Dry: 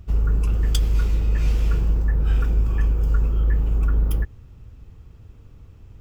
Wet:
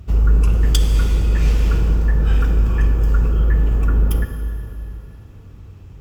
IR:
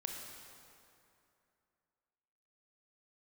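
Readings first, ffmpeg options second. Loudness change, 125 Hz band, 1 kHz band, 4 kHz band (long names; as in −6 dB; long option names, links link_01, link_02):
+4.5 dB, +4.5 dB, +6.5 dB, +6.5 dB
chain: -filter_complex "[0:a]highpass=43,asplit=2[link_01][link_02];[1:a]atrim=start_sample=2205,asetrate=34839,aresample=44100[link_03];[link_02][link_03]afir=irnorm=-1:irlink=0,volume=1.5dB[link_04];[link_01][link_04]amix=inputs=2:normalize=0"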